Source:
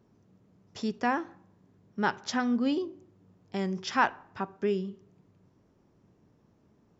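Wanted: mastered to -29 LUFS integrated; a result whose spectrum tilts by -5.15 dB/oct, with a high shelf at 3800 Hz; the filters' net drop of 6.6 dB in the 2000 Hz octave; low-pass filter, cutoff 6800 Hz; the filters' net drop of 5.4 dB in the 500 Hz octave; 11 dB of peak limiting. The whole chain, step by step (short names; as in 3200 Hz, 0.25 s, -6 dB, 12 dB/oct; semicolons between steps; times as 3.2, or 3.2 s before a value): LPF 6800 Hz; bell 500 Hz -7 dB; bell 2000 Hz -7.5 dB; high shelf 3800 Hz -6.5 dB; gain +8.5 dB; limiter -18.5 dBFS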